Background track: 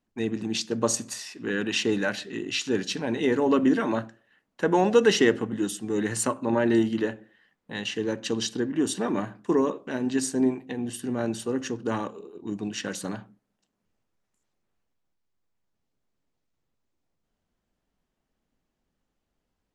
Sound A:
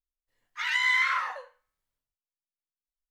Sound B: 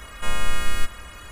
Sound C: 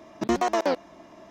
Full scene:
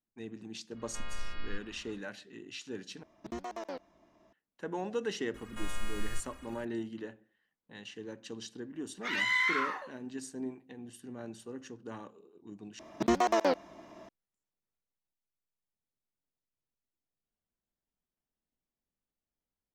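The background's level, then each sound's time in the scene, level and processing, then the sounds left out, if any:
background track −15.5 dB
0:00.72: mix in B −16.5 dB, fades 0.10 s + downsampling to 11,025 Hz
0:03.03: overwrite with C −17 dB + low-shelf EQ 81 Hz +11 dB
0:05.34: mix in B −14 dB
0:08.46: mix in A −4.5 dB
0:12.79: overwrite with C −3 dB

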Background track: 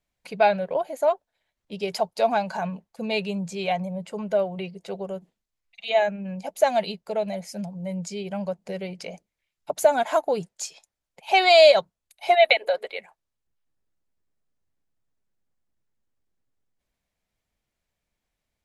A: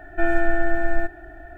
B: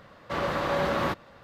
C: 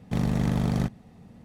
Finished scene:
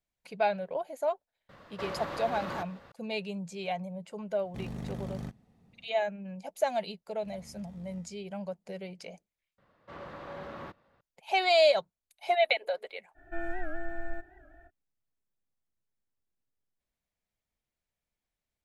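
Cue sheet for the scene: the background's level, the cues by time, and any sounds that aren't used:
background track −8.5 dB
0:01.49: mix in B −2.5 dB + downward compressor 5 to 1, threshold −32 dBFS
0:04.43: mix in C −13.5 dB
0:07.12: mix in C −16 dB + tuned comb filter 76 Hz, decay 1 s, mix 90%
0:09.58: overwrite with B −15.5 dB + high-shelf EQ 4,500 Hz −10.5 dB
0:13.14: mix in A −15 dB, fades 0.05 s + wow of a warped record 78 rpm, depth 160 cents

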